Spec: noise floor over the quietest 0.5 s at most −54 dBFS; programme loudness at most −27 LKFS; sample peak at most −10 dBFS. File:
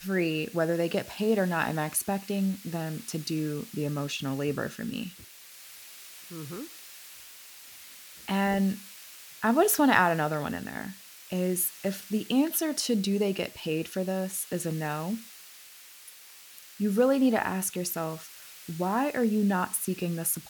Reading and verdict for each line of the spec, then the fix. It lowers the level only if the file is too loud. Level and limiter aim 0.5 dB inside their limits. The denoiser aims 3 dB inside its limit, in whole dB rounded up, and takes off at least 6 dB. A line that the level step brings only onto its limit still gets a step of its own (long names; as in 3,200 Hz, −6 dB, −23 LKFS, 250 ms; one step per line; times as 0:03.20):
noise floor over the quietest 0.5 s −50 dBFS: out of spec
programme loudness −28.5 LKFS: in spec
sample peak −7.5 dBFS: out of spec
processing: broadband denoise 7 dB, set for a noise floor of −50 dBFS
brickwall limiter −10.5 dBFS